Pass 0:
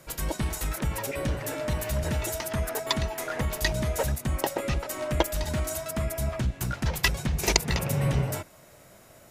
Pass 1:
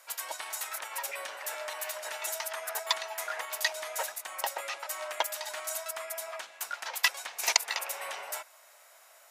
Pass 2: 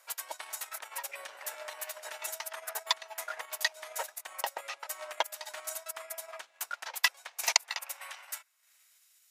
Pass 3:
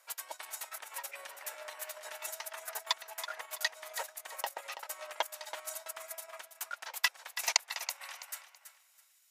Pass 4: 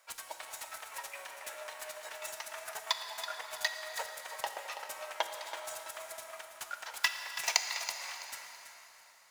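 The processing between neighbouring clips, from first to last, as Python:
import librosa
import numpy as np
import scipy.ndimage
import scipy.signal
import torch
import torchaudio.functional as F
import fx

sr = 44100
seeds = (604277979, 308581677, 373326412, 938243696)

y1 = scipy.signal.sosfilt(scipy.signal.butter(4, 730.0, 'highpass', fs=sr, output='sos'), x)
y1 = F.gain(torch.from_numpy(y1), -1.0).numpy()
y2 = fx.transient(y1, sr, attack_db=5, sustain_db=-10)
y2 = fx.filter_sweep_highpass(y2, sr, from_hz=240.0, to_hz=3300.0, start_s=6.82, end_s=9.09, q=0.77)
y2 = F.gain(torch.from_numpy(y2), -5.0).numpy()
y3 = fx.echo_feedback(y2, sr, ms=329, feedback_pct=27, wet_db=-11)
y3 = F.gain(torch.from_numpy(y3), -3.0).numpy()
y4 = scipy.ndimage.median_filter(y3, 3, mode='constant')
y4 = fx.rev_plate(y4, sr, seeds[0], rt60_s=4.2, hf_ratio=0.75, predelay_ms=0, drr_db=5.0)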